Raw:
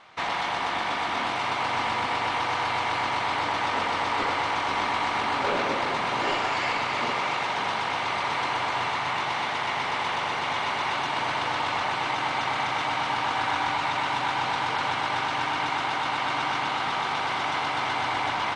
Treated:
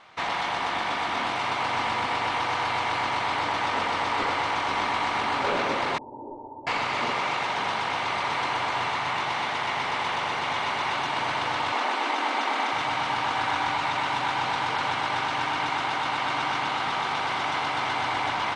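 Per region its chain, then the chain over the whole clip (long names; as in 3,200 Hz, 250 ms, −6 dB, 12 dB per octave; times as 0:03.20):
0:05.98–0:06.67: Chebyshev low-pass with heavy ripple 930 Hz, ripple 9 dB + phaser with its sweep stopped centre 690 Hz, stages 6
0:11.72–0:12.73: linear-phase brick-wall high-pass 210 Hz + low-shelf EQ 480 Hz +4.5 dB
whole clip: no processing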